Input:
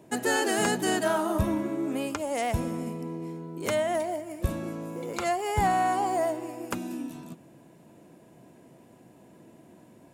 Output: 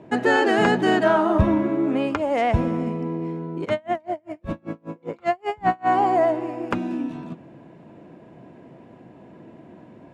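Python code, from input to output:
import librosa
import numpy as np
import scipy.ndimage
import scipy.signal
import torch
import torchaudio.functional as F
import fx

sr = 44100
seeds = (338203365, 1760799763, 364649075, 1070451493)

y = scipy.signal.sosfilt(scipy.signal.butter(2, 2600.0, 'lowpass', fs=sr, output='sos'), x)
y = fx.tremolo_db(y, sr, hz=5.1, depth_db=35, at=(3.64, 5.88), fade=0.02)
y = y * 10.0 ** (8.0 / 20.0)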